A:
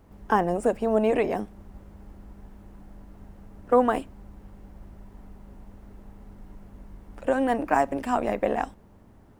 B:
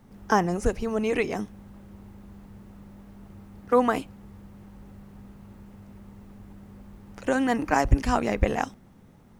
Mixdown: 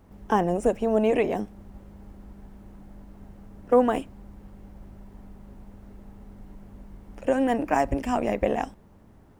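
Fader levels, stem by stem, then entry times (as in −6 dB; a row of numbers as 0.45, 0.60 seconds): −0.5, −11.5 decibels; 0.00, 0.00 seconds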